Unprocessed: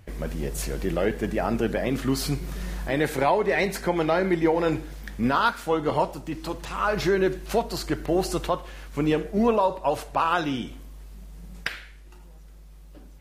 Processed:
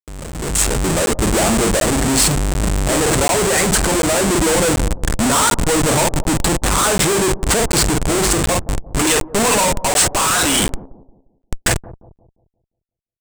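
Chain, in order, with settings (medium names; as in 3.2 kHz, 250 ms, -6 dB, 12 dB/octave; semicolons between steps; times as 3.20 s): 8.99–10.72 s: frequency weighting ITU-R 468; compression 2:1, threshold -27 dBFS, peak gain reduction 6.5 dB; reverb removal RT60 1.1 s; vibrato 3.1 Hz 38 cents; doubling 48 ms -8 dB; FDN reverb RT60 0.8 s, low-frequency decay 1.5×, high-frequency decay 0.85×, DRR 18 dB; Schmitt trigger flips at -35.5 dBFS; peaking EQ 8.1 kHz +14.5 dB 0.55 oct; level rider gain up to 16.5 dB; on a send: bucket-brigade echo 175 ms, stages 1024, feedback 37%, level -16 dB; on the sum: crackling interface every 0.74 s, samples 512, zero, from 0.32 s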